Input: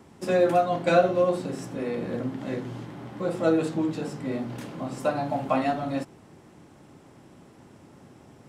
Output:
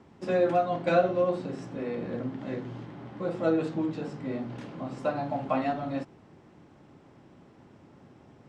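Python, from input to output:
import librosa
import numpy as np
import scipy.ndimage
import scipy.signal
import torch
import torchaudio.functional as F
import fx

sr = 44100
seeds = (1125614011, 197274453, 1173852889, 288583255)

y = fx.air_absorb(x, sr, metres=110.0)
y = F.gain(torch.from_numpy(y), -3.0).numpy()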